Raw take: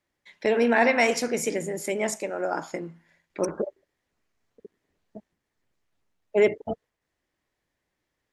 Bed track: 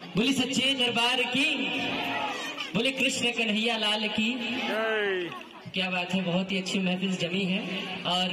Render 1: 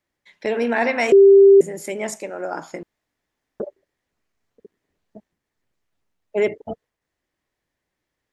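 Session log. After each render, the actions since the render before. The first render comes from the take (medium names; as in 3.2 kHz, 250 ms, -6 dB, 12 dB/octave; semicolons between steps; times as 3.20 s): 1.12–1.61 s: bleep 394 Hz -6 dBFS; 2.83–3.60 s: room tone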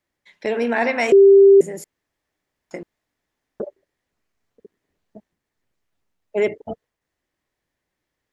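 1.84–2.71 s: room tone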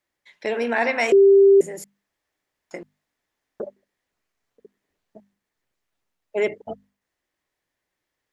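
bass shelf 400 Hz -6 dB; hum notches 50/100/150/200/250 Hz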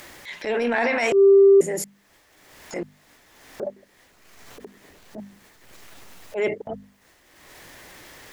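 upward compressor, threshold -17 dBFS; transient shaper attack -11 dB, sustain +6 dB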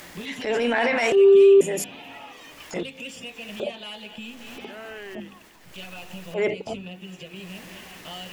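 add bed track -11.5 dB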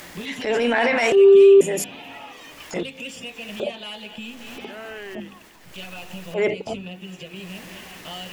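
trim +2.5 dB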